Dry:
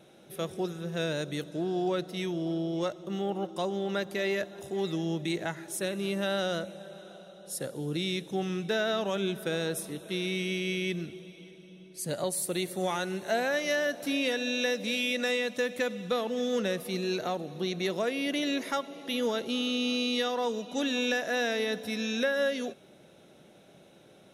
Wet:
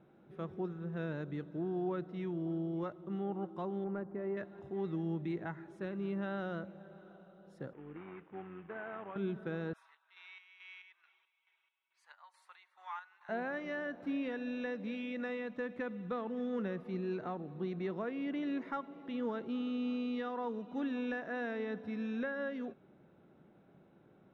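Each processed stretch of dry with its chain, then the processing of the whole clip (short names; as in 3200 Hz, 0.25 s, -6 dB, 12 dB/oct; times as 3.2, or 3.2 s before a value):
3.84–4.37 LPF 1100 Hz + hard clip -24.5 dBFS
7.73–9.16 CVSD 16 kbps + HPF 640 Hz 6 dB/oct + AM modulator 95 Hz, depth 25%
9.73–13.29 elliptic high-pass 920 Hz, stop band 80 dB + chopper 2.3 Hz, depth 60%
whole clip: Chebyshev low-pass 1100 Hz, order 2; bell 590 Hz -9.5 dB 0.93 oct; gain -2.5 dB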